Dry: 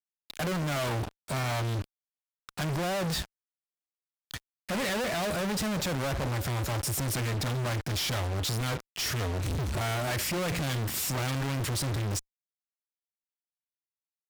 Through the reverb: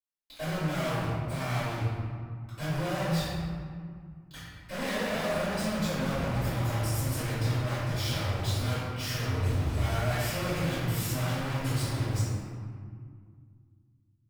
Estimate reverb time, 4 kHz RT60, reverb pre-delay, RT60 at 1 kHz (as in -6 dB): 2.1 s, 1.1 s, 3 ms, 2.0 s